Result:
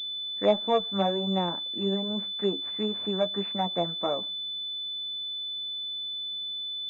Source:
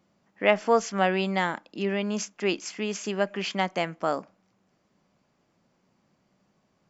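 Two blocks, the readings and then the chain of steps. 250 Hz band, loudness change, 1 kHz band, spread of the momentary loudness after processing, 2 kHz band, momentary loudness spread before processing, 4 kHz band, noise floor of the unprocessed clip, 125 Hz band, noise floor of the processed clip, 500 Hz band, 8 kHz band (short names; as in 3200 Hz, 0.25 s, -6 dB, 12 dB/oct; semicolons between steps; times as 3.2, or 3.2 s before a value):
-0.5 dB, -1.5 dB, -3.0 dB, 6 LU, -15.5 dB, 8 LU, +11.0 dB, -71 dBFS, 0.0 dB, -35 dBFS, -1.5 dB, n/a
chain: treble ducked by the level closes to 980 Hz, closed at -23 dBFS; flange 1.7 Hz, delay 8.4 ms, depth 3.3 ms, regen +19%; pulse-width modulation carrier 3500 Hz; gain +2 dB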